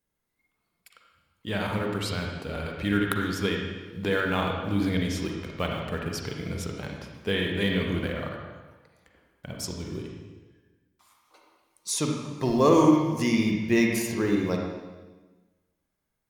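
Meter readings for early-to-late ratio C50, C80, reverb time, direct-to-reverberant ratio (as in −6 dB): 1.5 dB, 3.5 dB, 1.2 s, 0.5 dB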